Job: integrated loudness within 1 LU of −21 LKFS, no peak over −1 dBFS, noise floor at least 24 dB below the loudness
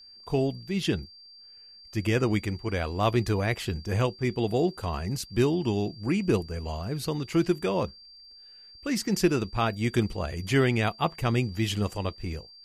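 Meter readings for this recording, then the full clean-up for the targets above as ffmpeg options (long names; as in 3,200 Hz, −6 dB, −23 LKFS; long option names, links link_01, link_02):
interfering tone 4,700 Hz; level of the tone −48 dBFS; integrated loudness −28.0 LKFS; sample peak −10.5 dBFS; target loudness −21.0 LKFS
→ -af "bandreject=frequency=4700:width=30"
-af "volume=7dB"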